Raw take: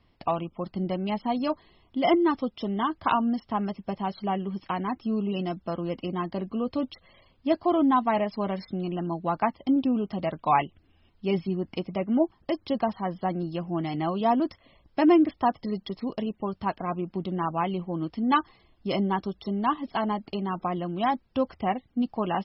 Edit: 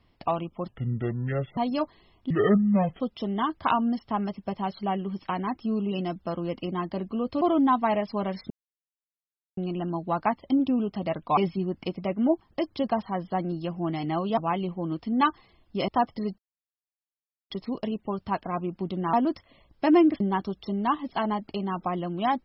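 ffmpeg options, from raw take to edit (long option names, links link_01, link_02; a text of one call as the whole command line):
ffmpeg -i in.wav -filter_complex "[0:a]asplit=13[link_01][link_02][link_03][link_04][link_05][link_06][link_07][link_08][link_09][link_10][link_11][link_12][link_13];[link_01]atrim=end=0.684[link_14];[link_02]atrim=start=0.68:end=1.26,asetpts=PTS-STARTPTS,asetrate=28665,aresample=44100[link_15];[link_03]atrim=start=1.256:end=1.994[link_16];[link_04]atrim=start=1.99:end=2.41,asetpts=PTS-STARTPTS,asetrate=26460,aresample=44100[link_17];[link_05]atrim=start=2.406:end=6.822[link_18];[link_06]atrim=start=7.648:end=8.74,asetpts=PTS-STARTPTS,afade=type=out:start_time=1.088:duration=0.004:curve=hsin,apad=pad_dur=1.07[link_19];[link_07]atrim=start=8.74:end=10.542,asetpts=PTS-STARTPTS,afade=type=in:duration=0.004:curve=hsin[link_20];[link_08]atrim=start=11.278:end=14.282[link_21];[link_09]atrim=start=17.478:end=18.992[link_22];[link_10]atrim=start=15.348:end=15.85,asetpts=PTS-STARTPTS,afade=type=out:start_time=0.498:duration=0.004:curve=hsin,apad=pad_dur=1.12[link_23];[link_11]atrim=start=15.85:end=17.482,asetpts=PTS-STARTPTS,afade=type=in:duration=0.004:curve=hsin[link_24];[link_12]atrim=start=14.278:end=15.352[link_25];[link_13]atrim=start=18.988[link_26];[link_14][link_15]acrossfade=duration=0.004:curve1=hsin:curve2=hsin[link_27];[link_27][link_16]acrossfade=duration=0.004:curve1=hsin:curve2=hsin[link_28];[link_28][link_17]acrossfade=duration=0.004:curve1=hsin:curve2=hsin[link_29];[link_29][link_18]acrossfade=duration=0.004:curve1=hsin:curve2=hsin[link_30];[link_19][link_20]concat=n=2:v=0:a=1[link_31];[link_30][link_31]acrossfade=duration=0.004:curve1=hsin:curve2=hsin[link_32];[link_32][link_21]acrossfade=duration=0.004:curve1=hsin:curve2=hsin[link_33];[link_33][link_22]acrossfade=duration=0.004:curve1=hsin:curve2=hsin[link_34];[link_23][link_24]concat=n=2:v=0:a=1[link_35];[link_34][link_35]acrossfade=duration=0.004:curve1=hsin:curve2=hsin[link_36];[link_36][link_25]acrossfade=duration=0.004:curve1=hsin:curve2=hsin[link_37];[link_37][link_26]acrossfade=duration=0.004:curve1=hsin:curve2=hsin" out.wav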